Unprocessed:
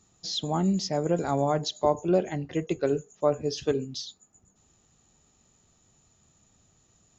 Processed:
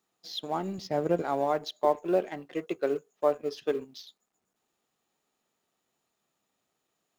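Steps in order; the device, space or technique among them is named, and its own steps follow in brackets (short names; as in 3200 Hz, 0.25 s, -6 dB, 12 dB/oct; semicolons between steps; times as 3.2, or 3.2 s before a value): phone line with mismatched companding (BPF 340–3600 Hz; G.711 law mismatch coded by A); 0.78–1.22 bell 97 Hz +13 dB 2.1 oct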